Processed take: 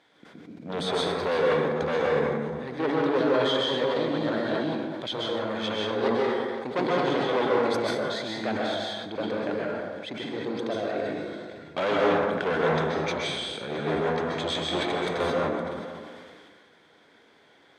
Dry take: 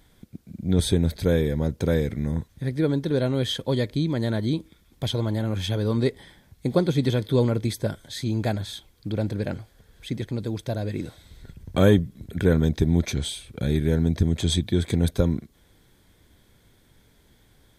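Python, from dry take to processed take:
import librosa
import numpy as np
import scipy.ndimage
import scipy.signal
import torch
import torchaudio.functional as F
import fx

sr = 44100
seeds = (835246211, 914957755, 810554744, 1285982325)

p1 = fx.level_steps(x, sr, step_db=21)
p2 = x + F.gain(torch.from_numpy(p1), -0.5).numpy()
p3 = np.clip(p2, -10.0 ** (-19.5 / 20.0), 10.0 ** (-19.5 / 20.0))
p4 = fx.bandpass_edges(p3, sr, low_hz=420.0, high_hz=3500.0)
p5 = p4 + fx.echo_single(p4, sr, ms=514, db=-21.0, dry=0)
p6 = fx.rev_plate(p5, sr, seeds[0], rt60_s=1.3, hf_ratio=0.5, predelay_ms=115, drr_db=-3.5)
p7 = fx.sustainer(p6, sr, db_per_s=26.0)
y = F.gain(torch.from_numpy(p7), -1.0).numpy()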